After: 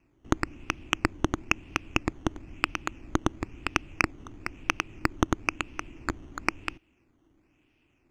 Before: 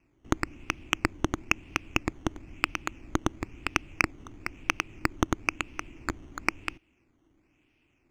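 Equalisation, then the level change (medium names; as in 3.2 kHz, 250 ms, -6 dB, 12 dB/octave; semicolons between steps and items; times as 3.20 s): peaking EQ 2.2 kHz -3.5 dB 0.28 oct; treble shelf 7.9 kHz -6 dB; +1.5 dB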